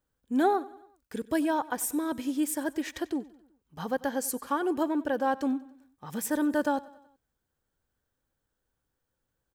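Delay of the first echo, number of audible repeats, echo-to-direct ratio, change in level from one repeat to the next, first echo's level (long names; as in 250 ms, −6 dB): 94 ms, 3, −19.0 dB, −5.5 dB, −20.5 dB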